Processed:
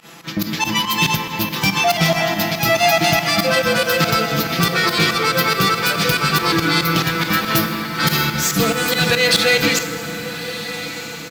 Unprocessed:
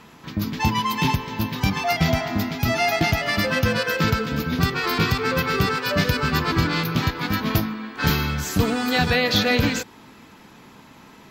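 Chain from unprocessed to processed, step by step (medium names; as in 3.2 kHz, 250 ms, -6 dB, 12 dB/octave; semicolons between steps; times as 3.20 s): tracing distortion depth 0.039 ms; high-pass 210 Hz 6 dB/octave; treble shelf 3.1 kHz +7.5 dB; band-stop 1 kHz, Q 15; comb 6 ms, depth 71%; in parallel at +0.5 dB: peak limiter -14.5 dBFS, peak gain reduction 13 dB; on the sum: volume shaper 141 bpm, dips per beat 2, -22 dB, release 89 ms; echo that smears into a reverb 1313 ms, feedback 42%, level -12 dB; on a send at -8 dB: reverberation RT60 3.8 s, pre-delay 18 ms; on the sum: trim -1 dB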